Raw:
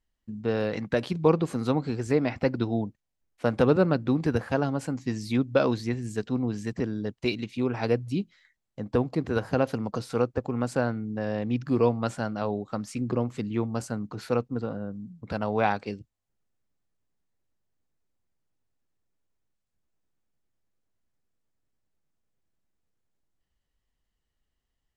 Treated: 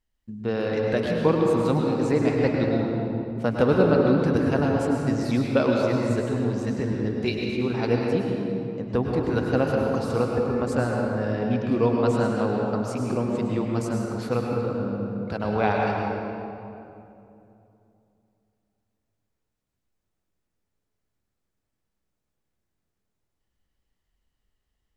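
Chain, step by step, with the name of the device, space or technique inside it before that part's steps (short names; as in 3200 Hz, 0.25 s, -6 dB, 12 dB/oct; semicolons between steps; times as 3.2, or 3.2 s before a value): stairwell (reverb RT60 2.8 s, pre-delay 96 ms, DRR -1 dB)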